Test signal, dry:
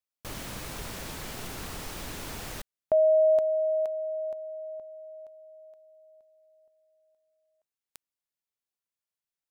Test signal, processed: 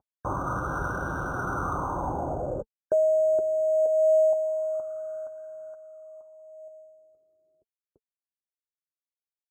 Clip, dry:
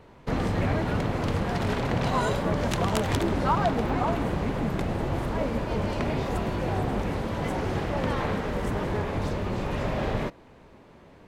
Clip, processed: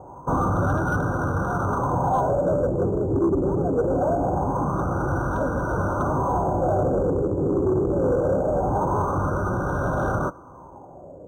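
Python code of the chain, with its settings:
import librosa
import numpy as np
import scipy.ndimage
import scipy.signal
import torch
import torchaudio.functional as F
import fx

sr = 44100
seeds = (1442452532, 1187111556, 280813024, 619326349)

y = fx.cvsd(x, sr, bps=64000)
y = scipy.signal.sosfilt(scipy.signal.butter(2, 46.0, 'highpass', fs=sr, output='sos'), y)
y = fx.high_shelf(y, sr, hz=8800.0, db=-11.0)
y = fx.rider(y, sr, range_db=5, speed_s=2.0)
y = fx.notch_comb(y, sr, f0_hz=220.0)
y = fx.filter_lfo_lowpass(y, sr, shape='sine', hz=0.23, low_hz=390.0, high_hz=1600.0, q=4.4)
y = 10.0 ** (-21.0 / 20.0) * np.tanh(y / 10.0 ** (-21.0 / 20.0))
y = fx.brickwall_bandstop(y, sr, low_hz=1600.0, high_hz=3600.0)
y = fx.air_absorb(y, sr, metres=170.0)
y = np.interp(np.arange(len(y)), np.arange(len(y))[::6], y[::6])
y = y * librosa.db_to_amplitude(5.5)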